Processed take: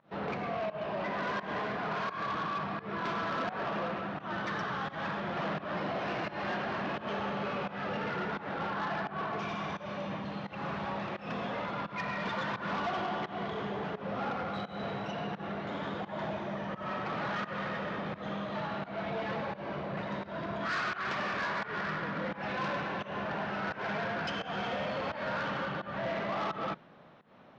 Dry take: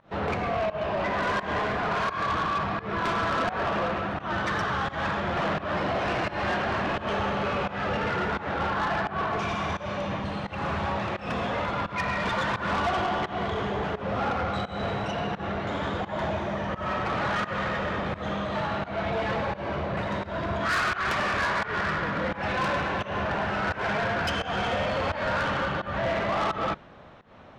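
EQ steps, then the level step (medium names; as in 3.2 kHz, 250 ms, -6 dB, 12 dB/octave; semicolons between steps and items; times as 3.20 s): low-pass 6 kHz 24 dB/octave; resonant low shelf 110 Hz -10.5 dB, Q 1.5; -7.5 dB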